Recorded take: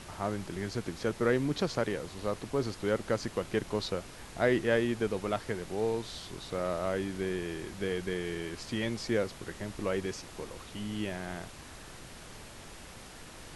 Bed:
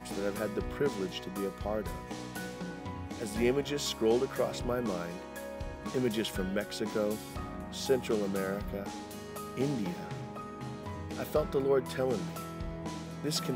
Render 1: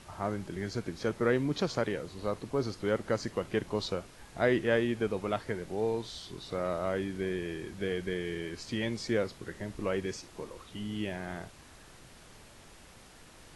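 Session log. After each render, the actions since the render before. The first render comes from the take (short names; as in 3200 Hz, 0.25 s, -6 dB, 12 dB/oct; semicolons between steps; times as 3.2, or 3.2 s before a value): noise print and reduce 6 dB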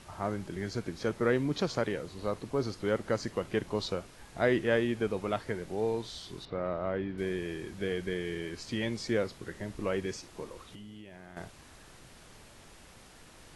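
6.45–7.18 air absorption 330 m; 10.62–11.37 compressor 16:1, threshold -43 dBFS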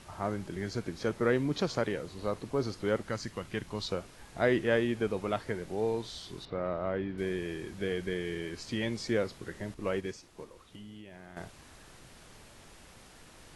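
3.03–3.9 bell 480 Hz -7.5 dB 2 oct; 9.74–10.75 upward expander, over -44 dBFS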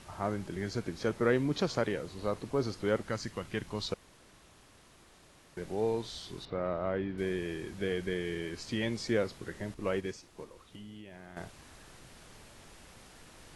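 3.94–5.57 room tone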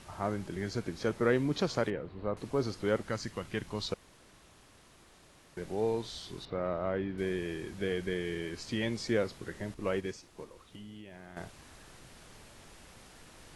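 1.9–2.37 air absorption 470 m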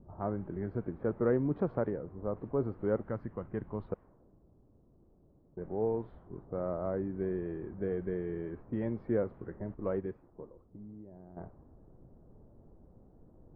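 Bessel low-pass 910 Hz, order 4; low-pass opened by the level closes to 360 Hz, open at -31 dBFS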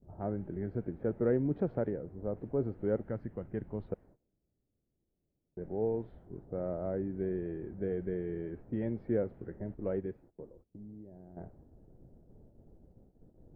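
gate -57 dBFS, range -19 dB; bell 1100 Hz -12.5 dB 0.55 oct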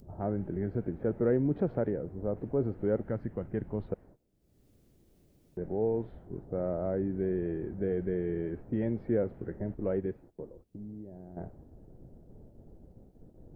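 in parallel at -2 dB: limiter -29.5 dBFS, peak gain reduction 11 dB; on the sum: upward compressor, threshold -50 dBFS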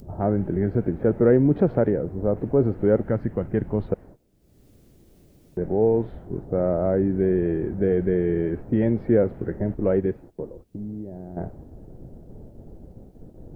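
gain +10 dB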